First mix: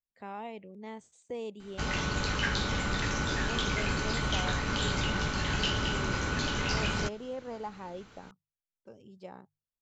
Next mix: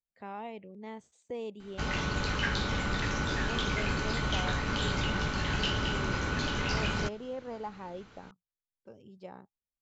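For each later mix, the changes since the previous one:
speech: remove mains-hum notches 50/100/150 Hz
master: add high-frequency loss of the air 59 metres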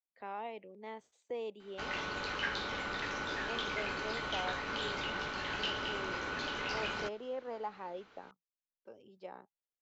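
background −3.5 dB
master: add three-way crossover with the lows and the highs turned down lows −15 dB, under 300 Hz, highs −13 dB, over 5,600 Hz

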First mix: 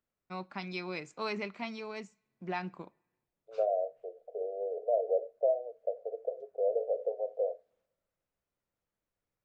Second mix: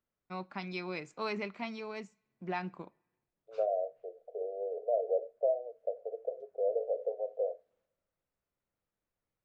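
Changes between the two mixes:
second voice: add high-frequency loss of the air 460 metres
master: add high-shelf EQ 4,500 Hz −4.5 dB

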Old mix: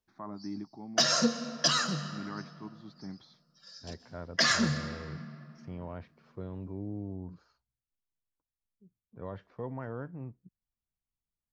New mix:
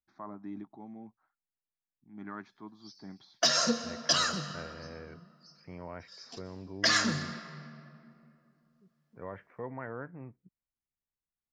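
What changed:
second voice: add high shelf with overshoot 3,100 Hz −13 dB, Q 3
background: entry +2.45 s
master: add low-shelf EQ 180 Hz −8.5 dB

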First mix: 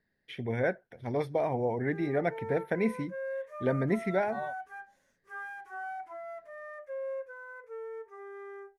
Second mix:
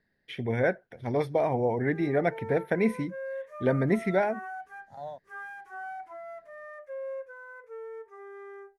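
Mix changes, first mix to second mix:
first voice +3.5 dB
second voice: entry +0.65 s

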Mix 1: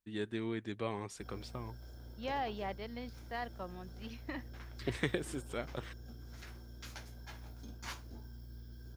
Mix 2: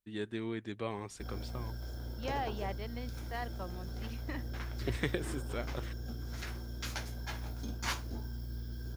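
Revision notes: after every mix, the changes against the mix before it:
background +9.0 dB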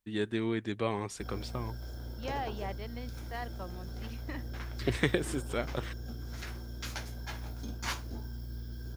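first voice +6.0 dB

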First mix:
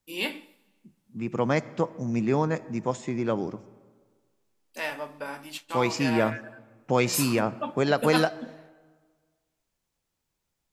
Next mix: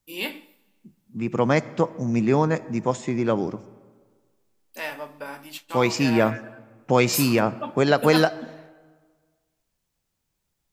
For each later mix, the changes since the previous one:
first voice: remove low-pass filter 12,000 Hz 24 dB per octave
second voice +4.5 dB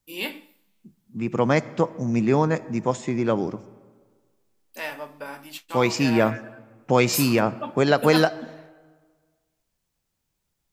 first voice: send off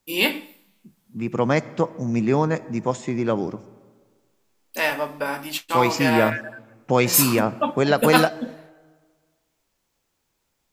first voice +10.0 dB

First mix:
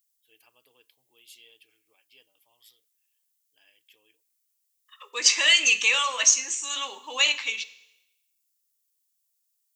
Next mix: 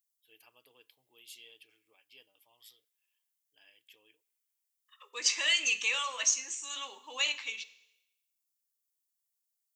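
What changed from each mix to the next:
second voice −9.0 dB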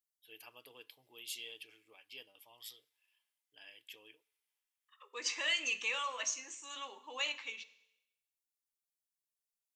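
first voice +7.0 dB
second voice: add high-shelf EQ 2,600 Hz −11.5 dB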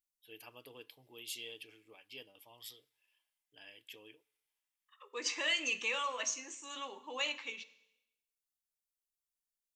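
master: add low-shelf EQ 460 Hz +10.5 dB

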